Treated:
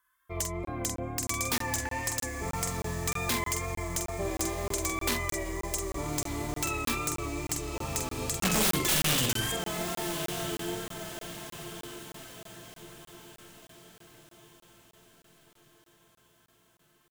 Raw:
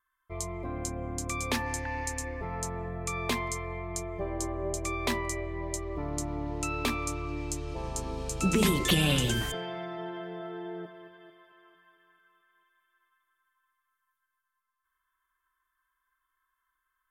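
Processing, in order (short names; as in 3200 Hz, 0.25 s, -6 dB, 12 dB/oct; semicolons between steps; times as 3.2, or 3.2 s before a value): HPF 45 Hz 6 dB/oct; high shelf 4300 Hz +8.5 dB; in parallel at +0.5 dB: compressor 6:1, threshold -39 dBFS, peak gain reduction 19 dB; on the sum: wow and flutter 44 cents; wrapped overs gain 17 dB; doubler 46 ms -5.5 dB; diffused feedback echo 1.245 s, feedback 47%, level -10 dB; crackling interface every 0.31 s, samples 1024, zero, from 0.65; gain -3.5 dB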